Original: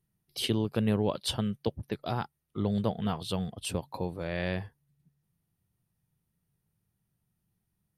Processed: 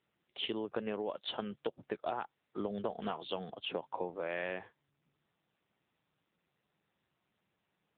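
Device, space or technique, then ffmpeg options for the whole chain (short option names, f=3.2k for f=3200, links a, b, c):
voicemail: -af "highpass=400,lowpass=3.2k,acompressor=threshold=-35dB:ratio=10,volume=3.5dB" -ar 8000 -c:a libopencore_amrnb -b:a 7950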